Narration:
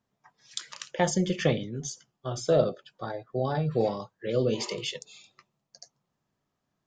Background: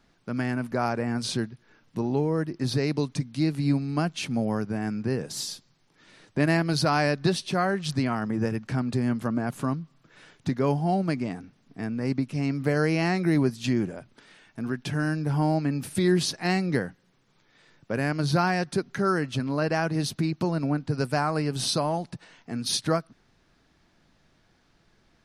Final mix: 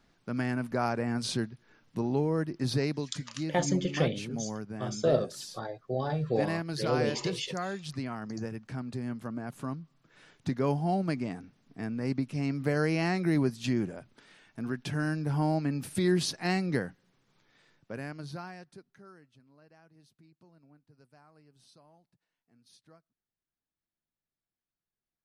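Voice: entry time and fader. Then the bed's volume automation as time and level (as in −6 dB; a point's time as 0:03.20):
2.55 s, −3.0 dB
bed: 0:02.83 −3 dB
0:03.08 −10 dB
0:09.40 −10 dB
0:10.53 −4 dB
0:17.50 −4 dB
0:19.42 −34 dB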